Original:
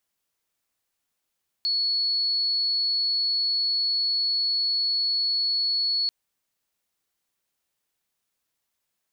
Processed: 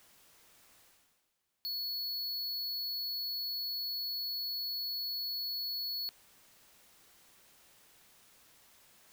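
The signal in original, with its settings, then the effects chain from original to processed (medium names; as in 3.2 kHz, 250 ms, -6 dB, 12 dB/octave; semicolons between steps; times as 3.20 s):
tone sine 4.39 kHz -21.5 dBFS 4.44 s
treble shelf 3.9 kHz -3.5 dB; reverse; upward compressor, threshold -45 dBFS; reverse; saturation -36.5 dBFS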